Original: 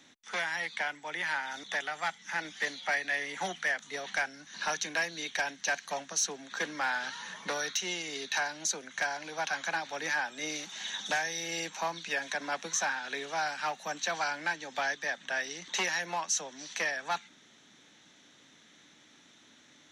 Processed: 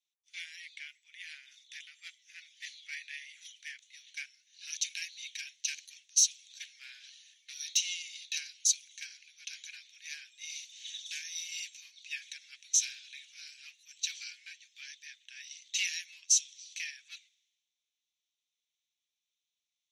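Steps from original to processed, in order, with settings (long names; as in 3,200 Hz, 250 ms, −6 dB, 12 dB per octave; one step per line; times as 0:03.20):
elliptic high-pass filter 2,400 Hz, stop band 80 dB
multiband upward and downward expander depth 100%
level −3 dB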